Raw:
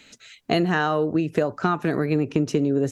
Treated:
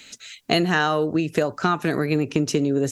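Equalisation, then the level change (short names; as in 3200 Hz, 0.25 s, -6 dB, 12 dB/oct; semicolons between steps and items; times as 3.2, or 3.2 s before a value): high shelf 2500 Hz +10 dB; 0.0 dB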